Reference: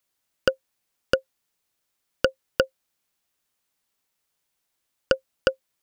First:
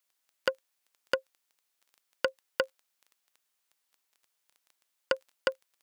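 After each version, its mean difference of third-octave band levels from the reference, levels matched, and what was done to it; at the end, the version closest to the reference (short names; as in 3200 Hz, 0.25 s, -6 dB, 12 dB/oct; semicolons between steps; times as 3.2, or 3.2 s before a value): 3.5 dB: one diode to ground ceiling -12.5 dBFS; crackle 11/s -42 dBFS; HPF 700 Hz 6 dB/oct; gain -1.5 dB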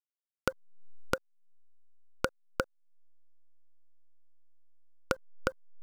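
5.0 dB: level-crossing sampler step -35 dBFS; resonant high shelf 1900 Hz -8.5 dB, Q 3; compressor 6:1, threshold -38 dBFS, peak gain reduction 23 dB; gain +7.5 dB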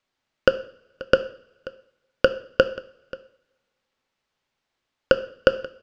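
6.5 dB: air absorption 160 m; on a send: echo 0.534 s -19 dB; on the sum: two-slope reverb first 0.51 s, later 1.7 s, from -22 dB, DRR 10.5 dB; gain +5 dB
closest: first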